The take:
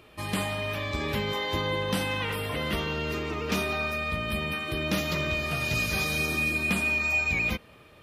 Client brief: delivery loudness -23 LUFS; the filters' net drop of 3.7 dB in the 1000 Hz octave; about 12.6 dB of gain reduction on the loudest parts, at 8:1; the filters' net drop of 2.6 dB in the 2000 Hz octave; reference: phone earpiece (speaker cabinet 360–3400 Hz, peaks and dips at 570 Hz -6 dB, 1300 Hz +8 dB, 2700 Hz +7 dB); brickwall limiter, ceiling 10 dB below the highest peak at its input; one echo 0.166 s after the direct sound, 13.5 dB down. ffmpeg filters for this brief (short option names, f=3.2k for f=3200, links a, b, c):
-af "equalizer=f=1k:t=o:g=-7,equalizer=f=2k:t=o:g=-8,acompressor=threshold=-39dB:ratio=8,alimiter=level_in=13dB:limit=-24dB:level=0:latency=1,volume=-13dB,highpass=360,equalizer=f=570:t=q:w=4:g=-6,equalizer=f=1.3k:t=q:w=4:g=8,equalizer=f=2.7k:t=q:w=4:g=7,lowpass=f=3.4k:w=0.5412,lowpass=f=3.4k:w=1.3066,aecho=1:1:166:0.211,volume=21.5dB"